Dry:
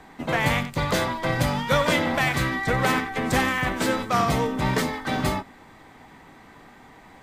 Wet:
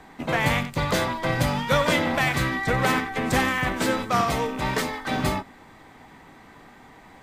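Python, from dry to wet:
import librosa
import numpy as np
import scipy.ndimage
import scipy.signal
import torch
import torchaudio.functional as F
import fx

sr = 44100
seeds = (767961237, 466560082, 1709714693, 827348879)

y = fx.rattle_buzz(x, sr, strikes_db=-32.0, level_db=-32.0)
y = fx.peak_eq(y, sr, hz=150.0, db=-6.0, octaves=2.1, at=(4.21, 5.11))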